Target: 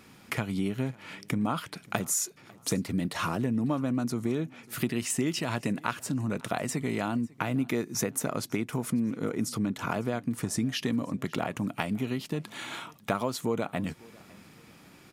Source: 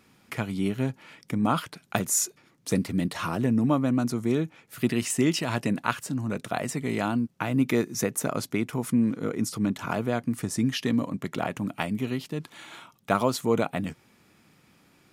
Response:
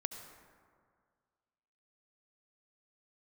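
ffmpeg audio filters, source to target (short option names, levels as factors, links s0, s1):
-af "acompressor=threshold=0.0178:ratio=3,aecho=1:1:548|1096:0.0631|0.0227,volume=2"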